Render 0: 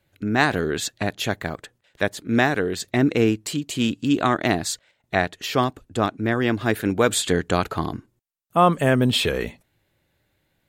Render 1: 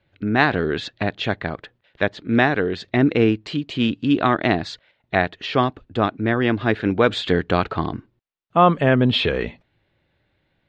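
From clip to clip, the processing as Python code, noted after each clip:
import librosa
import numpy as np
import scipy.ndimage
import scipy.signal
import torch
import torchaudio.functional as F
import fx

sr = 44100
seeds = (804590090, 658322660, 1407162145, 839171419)

y = scipy.signal.sosfilt(scipy.signal.butter(4, 4000.0, 'lowpass', fs=sr, output='sos'), x)
y = y * librosa.db_to_amplitude(2.0)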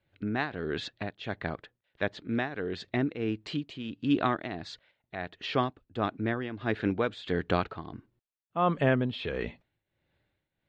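y = fx.tremolo_shape(x, sr, shape='triangle', hz=1.5, depth_pct=80)
y = y * librosa.db_to_amplitude(-6.5)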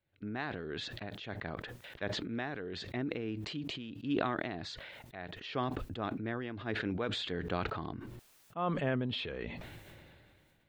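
y = fx.sustainer(x, sr, db_per_s=26.0)
y = y * librosa.db_to_amplitude(-8.5)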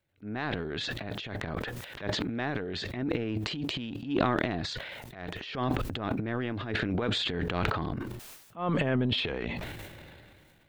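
y = fx.transient(x, sr, attack_db=-9, sustain_db=12)
y = y * librosa.db_to_amplitude(5.0)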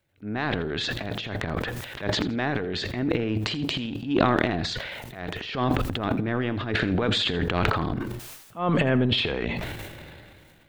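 y = fx.echo_feedback(x, sr, ms=82, feedback_pct=30, wet_db=-15.5)
y = y * librosa.db_to_amplitude(5.5)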